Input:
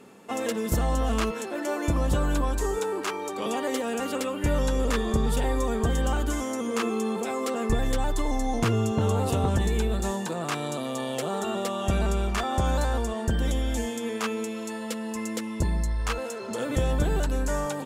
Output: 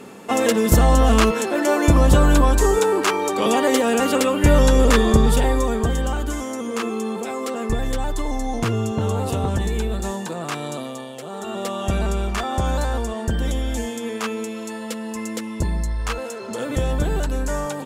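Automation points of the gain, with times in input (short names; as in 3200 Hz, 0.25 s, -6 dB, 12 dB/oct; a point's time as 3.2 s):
5.06 s +10.5 dB
6.12 s +2 dB
10.79 s +2 dB
11.16 s -6 dB
11.68 s +3 dB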